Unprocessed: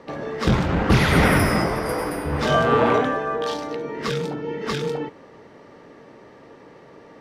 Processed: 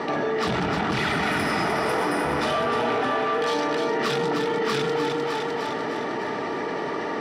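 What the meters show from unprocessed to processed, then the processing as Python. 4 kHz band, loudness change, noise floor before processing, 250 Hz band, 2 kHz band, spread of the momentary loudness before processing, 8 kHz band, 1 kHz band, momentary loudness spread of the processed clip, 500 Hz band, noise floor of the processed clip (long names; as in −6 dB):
+0.5 dB, −3.0 dB, −47 dBFS, −3.5 dB, −1.0 dB, 12 LU, −3.0 dB, 0.0 dB, 5 LU, −0.5 dB, −29 dBFS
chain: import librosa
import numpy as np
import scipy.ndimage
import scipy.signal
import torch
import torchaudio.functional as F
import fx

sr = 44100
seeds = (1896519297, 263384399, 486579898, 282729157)

y = scipy.signal.sosfilt(scipy.signal.butter(2, 9300.0, 'lowpass', fs=sr, output='sos'), x)
y = fx.rider(y, sr, range_db=5, speed_s=0.5)
y = 10.0 ** (-22.0 / 20.0) * np.tanh(y / 10.0 ** (-22.0 / 20.0))
y = fx.highpass(y, sr, hz=400.0, slope=6)
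y = fx.high_shelf(y, sr, hz=6600.0, db=-6.0)
y = fx.notch(y, sr, hz=6700.0, q=13.0)
y = fx.notch_comb(y, sr, f0_hz=530.0)
y = fx.echo_split(y, sr, split_hz=520.0, low_ms=151, high_ms=304, feedback_pct=52, wet_db=-6.5)
y = fx.env_flatten(y, sr, amount_pct=70)
y = F.gain(torch.from_numpy(y), 3.5).numpy()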